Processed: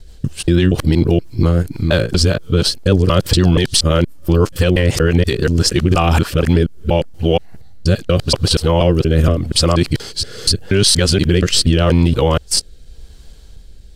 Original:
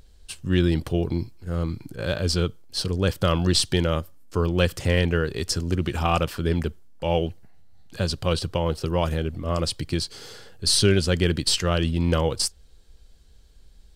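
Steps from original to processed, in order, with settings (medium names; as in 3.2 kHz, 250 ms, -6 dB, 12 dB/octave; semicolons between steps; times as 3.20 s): time reversed locally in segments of 238 ms; rotary cabinet horn 6 Hz, later 0.85 Hz, at 5.81 s; loudness maximiser +16 dB; trim -1 dB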